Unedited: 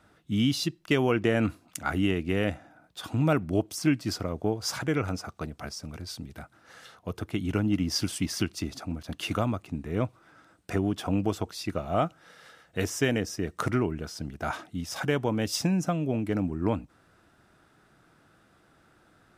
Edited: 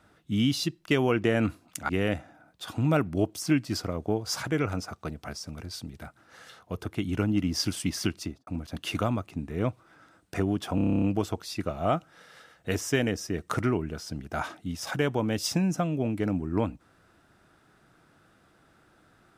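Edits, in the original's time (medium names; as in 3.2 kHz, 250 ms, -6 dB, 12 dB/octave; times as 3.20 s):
1.89–2.25 s: delete
8.54–8.83 s: studio fade out
11.11 s: stutter 0.03 s, 10 plays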